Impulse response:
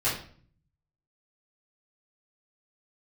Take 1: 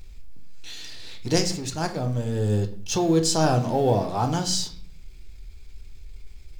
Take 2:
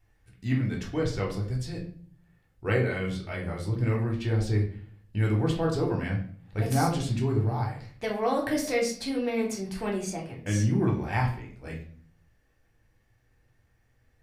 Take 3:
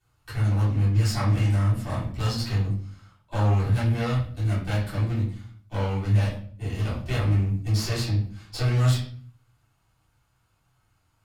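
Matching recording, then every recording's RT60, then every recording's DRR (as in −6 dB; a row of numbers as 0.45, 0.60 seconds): 3; 0.50, 0.50, 0.50 seconds; 6.0, −1.5, −11.5 decibels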